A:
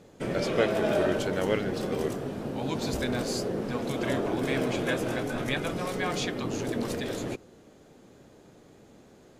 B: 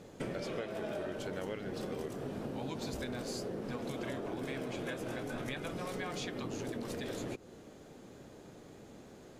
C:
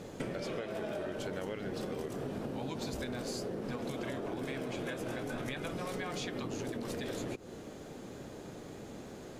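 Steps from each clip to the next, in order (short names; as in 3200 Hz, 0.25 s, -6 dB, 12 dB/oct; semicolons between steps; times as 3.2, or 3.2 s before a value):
compressor 10:1, threshold -37 dBFS, peak gain reduction 18.5 dB; gain +1 dB
compressor 3:1, threshold -43 dBFS, peak gain reduction 7.5 dB; gain +6.5 dB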